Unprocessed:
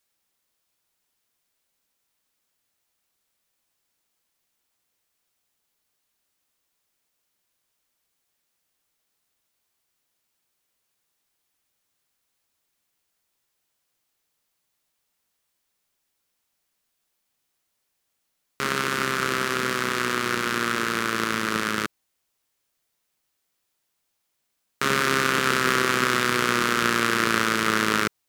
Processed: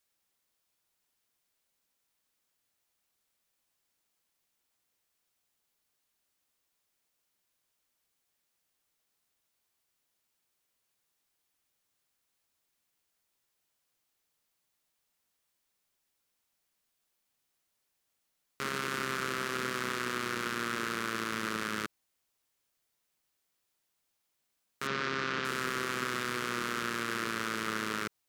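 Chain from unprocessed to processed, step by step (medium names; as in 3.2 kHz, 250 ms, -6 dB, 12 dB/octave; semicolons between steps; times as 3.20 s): 24.87–25.45 s: low-pass 5.5 kHz 24 dB/octave; peak limiter -14 dBFS, peak gain reduction 11.5 dB; trim -4 dB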